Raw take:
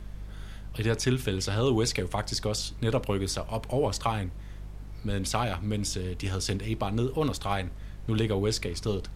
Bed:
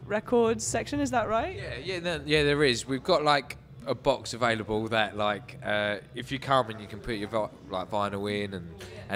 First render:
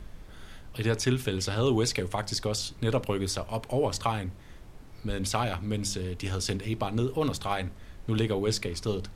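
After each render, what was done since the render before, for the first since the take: de-hum 50 Hz, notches 4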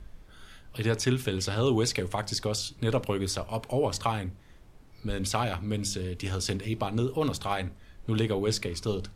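noise print and reduce 6 dB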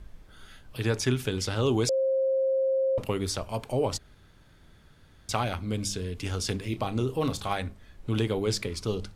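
1.89–2.98 bleep 532 Hz -22 dBFS; 3.98–5.29 room tone; 6.62–7.53 doubler 31 ms -12.5 dB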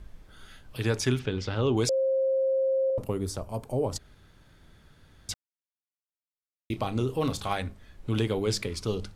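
1.19–1.77 air absorption 170 m; 2.9–3.96 bell 2800 Hz -12.5 dB 2.3 oct; 5.34–6.7 mute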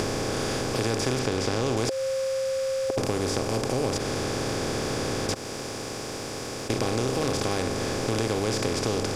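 per-bin compression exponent 0.2; compressor 2:1, threshold -27 dBFS, peak gain reduction 7 dB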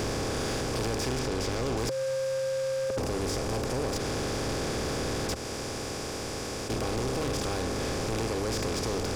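octaver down 2 oct, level -5 dB; soft clip -25.5 dBFS, distortion -11 dB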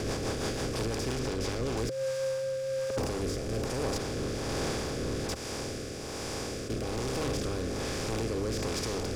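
level-crossing sampler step -57 dBFS; rotary speaker horn 6 Hz, later 1.2 Hz, at 1.2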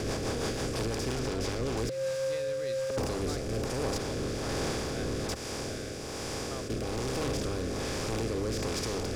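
add bed -21 dB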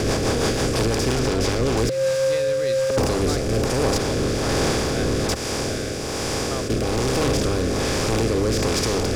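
gain +11 dB

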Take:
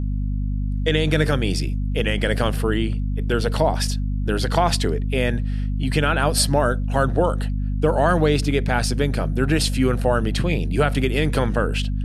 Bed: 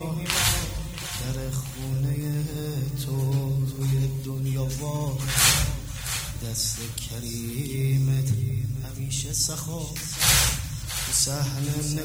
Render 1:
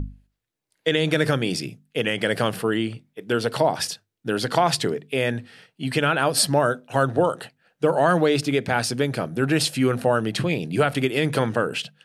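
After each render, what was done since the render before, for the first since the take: notches 50/100/150/200/250 Hz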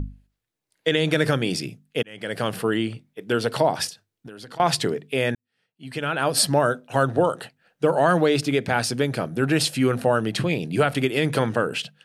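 2.03–2.6 fade in; 3.89–4.6 compressor 8:1, threshold -37 dBFS; 5.35–6.33 fade in quadratic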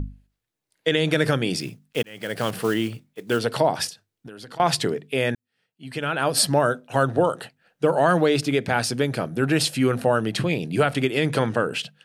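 1.6–3.4 block floating point 5-bit; 10.9–11.74 LPF 11000 Hz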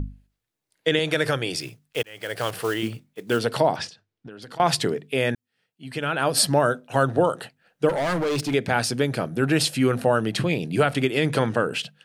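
0.99–2.83 bell 210 Hz -14.5 dB; 3.76–4.42 air absorption 120 m; 7.89–8.54 hard clip -21.5 dBFS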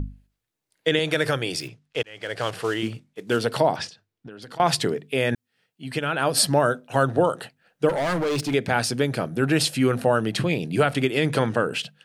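1.67–3.38 LPF 5300 Hz -> 11000 Hz; 5.32–5.99 gain +3.5 dB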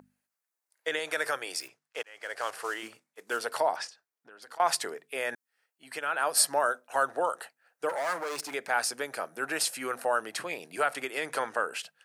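HPF 880 Hz 12 dB/oct; bell 3300 Hz -11.5 dB 1.2 oct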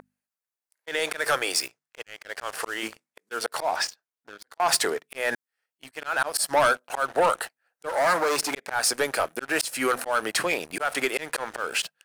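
auto swell 0.211 s; sample leveller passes 3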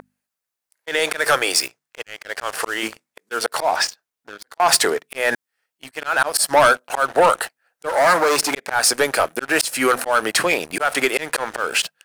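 gain +7 dB

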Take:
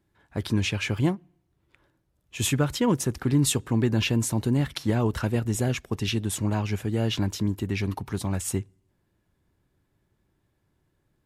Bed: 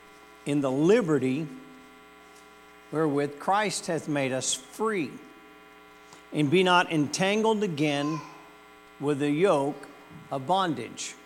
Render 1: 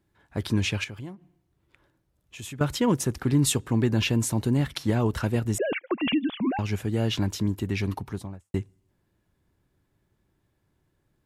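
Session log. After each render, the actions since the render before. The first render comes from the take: 0.84–2.61 compressor 2.5:1, threshold -42 dBFS; 5.58–6.59 sine-wave speech; 7.91–8.54 studio fade out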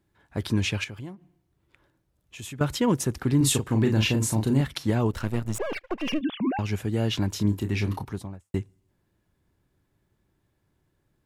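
3.37–4.61 doubler 37 ms -5 dB; 5.12–6.21 half-wave gain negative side -12 dB; 7.3–8.05 doubler 29 ms -7 dB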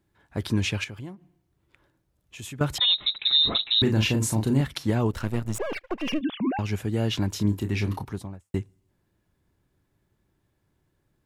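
2.78–3.82 inverted band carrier 3900 Hz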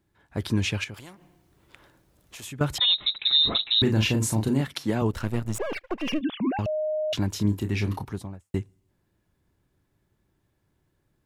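0.94–2.45 spectral compressor 2:1; 4.48–5.02 HPF 150 Hz; 6.66–7.13 bleep 617 Hz -24 dBFS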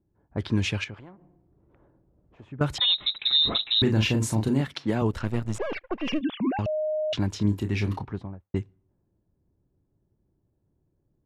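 low-pass opened by the level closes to 560 Hz, open at -22 dBFS; high shelf 9400 Hz -10 dB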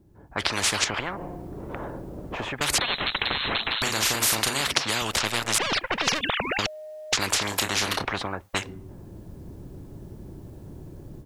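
AGC gain up to 16 dB; spectral compressor 10:1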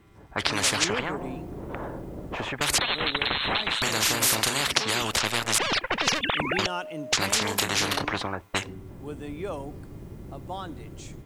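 add bed -11.5 dB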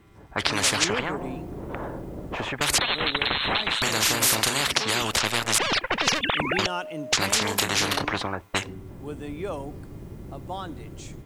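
gain +1.5 dB; limiter -2 dBFS, peak gain reduction 2 dB

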